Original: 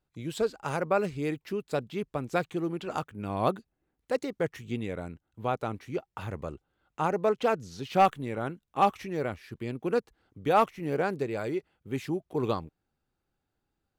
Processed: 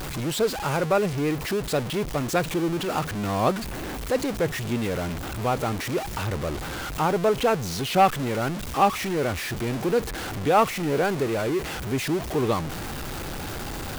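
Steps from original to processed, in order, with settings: zero-crossing step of -28.5 dBFS; gain +2.5 dB

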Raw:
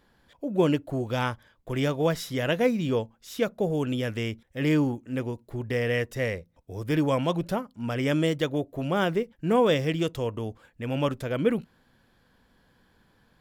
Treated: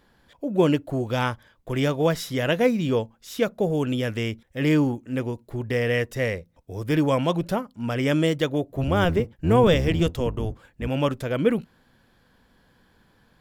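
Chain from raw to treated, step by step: 8.69–10.88 octaver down 1 oct, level 0 dB; gain +3 dB

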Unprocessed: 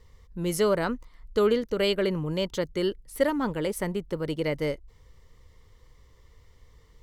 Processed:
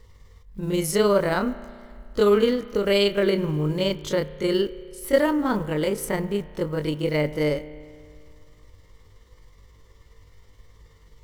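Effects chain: block floating point 7-bit; granular stretch 1.6×, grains 0.106 s; spring tank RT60 2.2 s, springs 33 ms, chirp 30 ms, DRR 15 dB; gain +5 dB

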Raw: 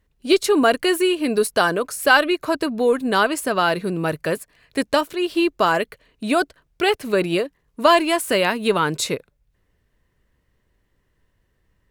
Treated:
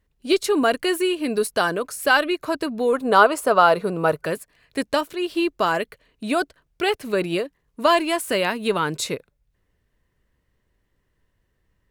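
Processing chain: spectral gain 2.93–4.25, 400–1500 Hz +8 dB; gain -3 dB

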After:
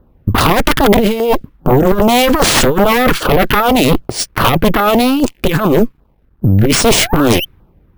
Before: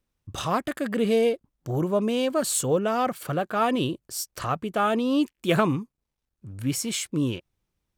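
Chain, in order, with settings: low-pass opened by the level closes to 1000 Hz, open at -18 dBFS; negative-ratio compressor -28 dBFS, ratio -0.5; painted sound rise, 6.9–7.45, 380–3200 Hz -44 dBFS; added harmonics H 3 -11 dB, 4 -6 dB, 7 -15 dB, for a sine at -14 dBFS; LFO notch saw down 2.5 Hz 490–2500 Hz; careless resampling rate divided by 3×, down none, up hold; overloaded stage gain 19.5 dB; maximiser +27 dB; gain -1 dB

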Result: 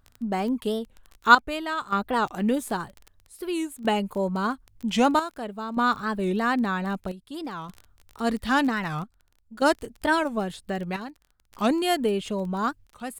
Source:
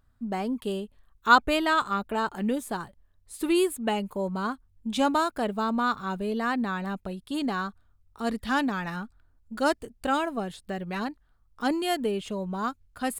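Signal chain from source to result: crackle 20/s -35 dBFS; chopper 0.52 Hz, depth 65%, duty 70%; record warp 45 rpm, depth 250 cents; gain +3.5 dB

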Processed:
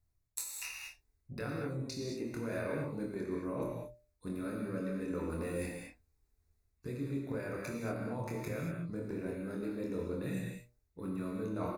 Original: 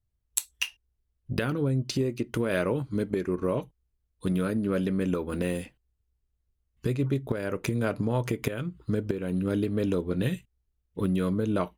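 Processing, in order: notches 60/120/180/240/300/360/420/480/540/600 Hz; reverse; compressor 10:1, threshold -40 dBFS, peak gain reduction 19.5 dB; reverse; Butterworth band-stop 3100 Hz, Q 3; doubler 25 ms -4 dB; non-linear reverb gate 0.25 s flat, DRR -0.5 dB; gain +1.5 dB

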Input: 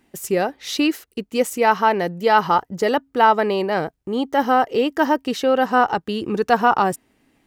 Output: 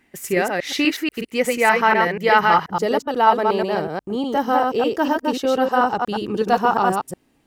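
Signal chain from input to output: reverse delay 0.121 s, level -2.5 dB; bell 2000 Hz +10 dB 0.77 oct, from 2.71 s -4.5 dB; gain -2 dB

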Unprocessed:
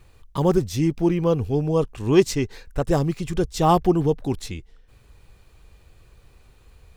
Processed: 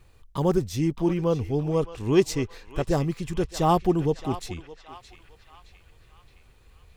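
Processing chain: narrowing echo 0.617 s, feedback 59%, band-pass 2200 Hz, level -9 dB; gain -3.5 dB

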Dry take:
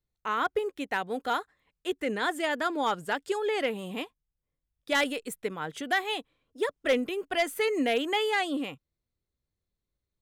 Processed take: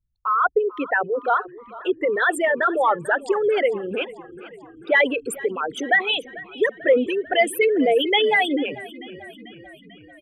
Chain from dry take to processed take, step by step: formant sharpening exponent 3; frequency-shifting echo 0.442 s, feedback 63%, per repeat -32 Hz, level -19 dB; gain +9 dB

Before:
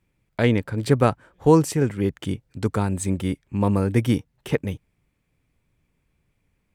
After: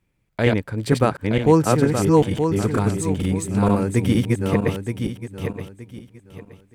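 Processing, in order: regenerating reverse delay 0.461 s, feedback 49%, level -0.5 dB

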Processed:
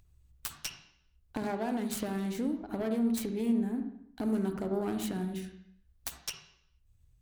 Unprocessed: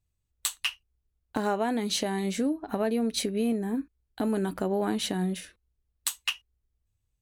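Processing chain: self-modulated delay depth 0.25 ms; low shelf 110 Hz +11 dB; upward compressor, threshold -44 dBFS; on a send: reverb RT60 0.75 s, pre-delay 46 ms, DRR 7 dB; on the sum: gain -7.5 dB

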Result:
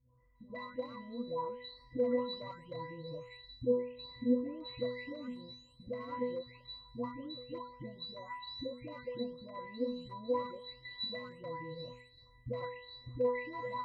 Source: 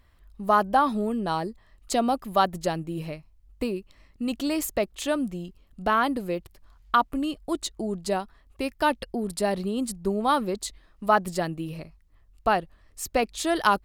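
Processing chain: spectral delay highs late, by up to 0.717 s; in parallel at -4.5 dB: wrapped overs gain 20.5 dB; on the sum: AGC gain up to 13 dB; limiter -9 dBFS, peak gain reduction 7.5 dB; dynamic EQ 260 Hz, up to -4 dB, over -33 dBFS, Q 1.9; compressor 4:1, threshold -30 dBFS, peak gain reduction 14 dB; LPF 5100 Hz; octave resonator B, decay 0.56 s; gain +12 dB

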